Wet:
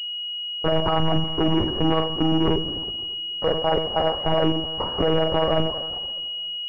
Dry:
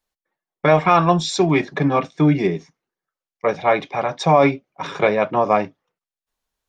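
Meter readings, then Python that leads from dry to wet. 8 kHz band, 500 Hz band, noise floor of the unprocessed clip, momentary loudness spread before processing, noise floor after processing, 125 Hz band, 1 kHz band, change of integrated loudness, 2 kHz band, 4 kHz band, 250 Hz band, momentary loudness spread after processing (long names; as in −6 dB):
below −20 dB, −4.0 dB, below −85 dBFS, 10 LU, −31 dBFS, −4.0 dB, −7.5 dB, −4.5 dB, −10.5 dB, +11.0 dB, −3.0 dB, 7 LU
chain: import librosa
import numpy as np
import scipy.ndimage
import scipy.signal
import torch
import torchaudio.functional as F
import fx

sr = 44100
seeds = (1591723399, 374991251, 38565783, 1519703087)

y = fx.wiener(x, sr, points=15)
y = fx.recorder_agc(y, sr, target_db=-12.0, rise_db_per_s=13.0, max_gain_db=30)
y = fx.env_lowpass_down(y, sr, base_hz=1000.0, full_db=-10.0)
y = scipy.signal.sosfilt(scipy.signal.butter(4, 100.0, 'highpass', fs=sr, output='sos'), y)
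y = fx.level_steps(y, sr, step_db=23)
y = fx.rev_double_slope(y, sr, seeds[0], early_s=0.38, late_s=2.5, knee_db=-17, drr_db=7.0)
y = fx.leveller(y, sr, passes=5)
y = fx.echo_feedback(y, sr, ms=292, feedback_pct=45, wet_db=-23)
y = fx.lpc_monotone(y, sr, seeds[1], pitch_hz=160.0, order=16)
y = fx.pwm(y, sr, carrier_hz=2900.0)
y = y * librosa.db_to_amplitude(-7.0)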